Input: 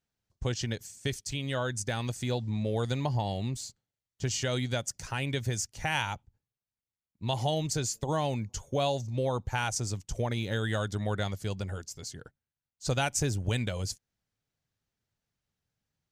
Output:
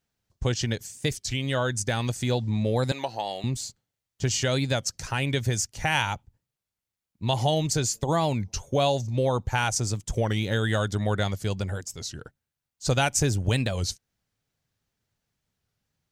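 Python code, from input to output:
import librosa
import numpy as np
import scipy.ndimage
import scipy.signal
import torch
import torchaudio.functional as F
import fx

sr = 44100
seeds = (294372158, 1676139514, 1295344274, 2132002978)

y = fx.bessel_highpass(x, sr, hz=570.0, order=2, at=(2.93, 3.44))
y = fx.record_warp(y, sr, rpm=33.33, depth_cents=160.0)
y = y * 10.0 ** (5.5 / 20.0)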